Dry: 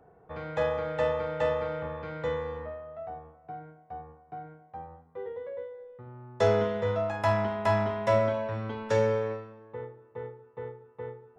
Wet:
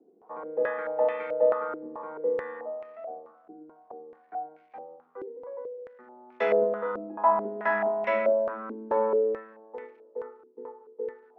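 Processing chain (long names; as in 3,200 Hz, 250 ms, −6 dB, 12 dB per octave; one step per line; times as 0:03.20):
surface crackle 480 per second −56 dBFS
Butterworth high-pass 210 Hz 48 dB per octave
low-pass on a step sequencer 4.6 Hz 330–2,300 Hz
level −3.5 dB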